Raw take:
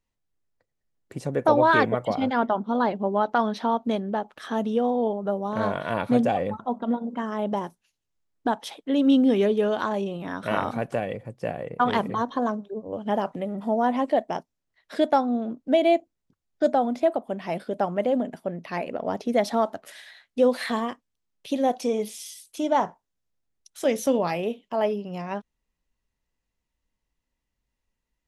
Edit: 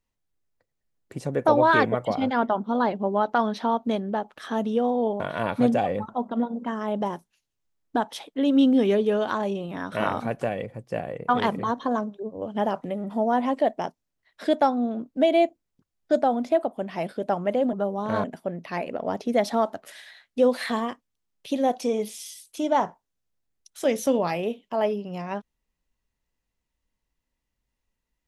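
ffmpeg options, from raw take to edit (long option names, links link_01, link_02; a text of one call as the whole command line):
ffmpeg -i in.wav -filter_complex "[0:a]asplit=4[link_01][link_02][link_03][link_04];[link_01]atrim=end=5.202[link_05];[link_02]atrim=start=5.708:end=18.242[link_06];[link_03]atrim=start=5.198:end=5.712[link_07];[link_04]atrim=start=18.238[link_08];[link_05][link_06]acrossfade=duration=0.004:curve1=hsin:curve2=hsin[link_09];[link_09][link_07]acrossfade=duration=0.004:curve1=hsin:curve2=hsin[link_10];[link_10][link_08]acrossfade=duration=0.004:curve1=hsin:curve2=hsin" out.wav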